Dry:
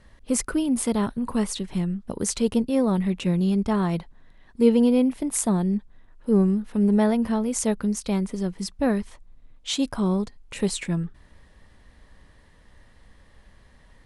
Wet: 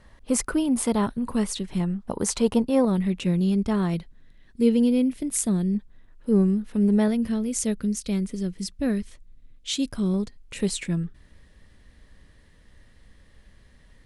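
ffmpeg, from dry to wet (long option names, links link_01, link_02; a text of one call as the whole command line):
ffmpeg -i in.wav -af "asetnsamples=nb_out_samples=441:pad=0,asendcmd='1.07 equalizer g -3;1.8 equalizer g 7;2.85 equalizer g -5;3.94 equalizer g -13.5;5.75 equalizer g -6;7.08 equalizer g -14.5;10.14 equalizer g -7.5',equalizer=frequency=890:width_type=o:width=1.2:gain=3" out.wav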